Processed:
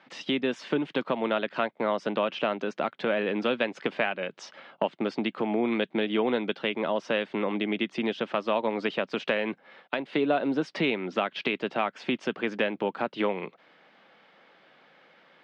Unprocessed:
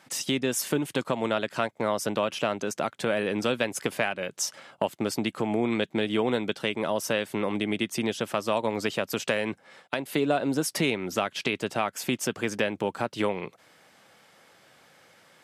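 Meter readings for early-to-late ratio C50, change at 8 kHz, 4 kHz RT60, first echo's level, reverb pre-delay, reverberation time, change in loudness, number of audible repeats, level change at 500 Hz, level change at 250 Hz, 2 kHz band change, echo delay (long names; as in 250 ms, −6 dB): no reverb audible, below −20 dB, no reverb audible, no echo audible, no reverb audible, no reverb audible, −0.5 dB, no echo audible, 0.0 dB, −0.5 dB, 0.0 dB, no echo audible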